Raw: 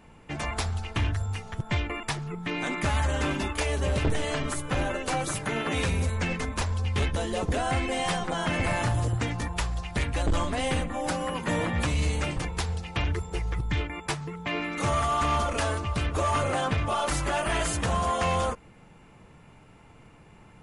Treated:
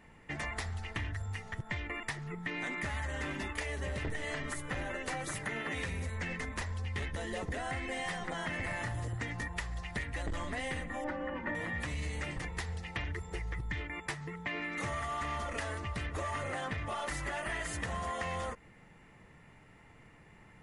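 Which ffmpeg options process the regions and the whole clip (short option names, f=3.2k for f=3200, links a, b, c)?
-filter_complex "[0:a]asettb=1/sr,asplit=3[a][b][c];[a]atrim=end=11.044[d];[b]atrim=start=11.04:end=11.55,asetpts=PTS-STARTPTS,afade=t=in:d=0.004:c=qsin,afade=t=out:st=0.506:d=0.004:c=qsin,lowpass=1.7k,aecho=1:1:3.4:0.78,atrim=end_sample=22491[e];[c]atrim=start=11.546[f];[d][e]acrossfade=d=0.004:c1=hsin:c2=qsin[g];[g][f]acrossfade=d=0.004:c1=qsin:c2=hsin,equalizer=f=1.9k:t=o:w=0.23:g=14.5,acompressor=threshold=-28dB:ratio=6,volume=-6dB"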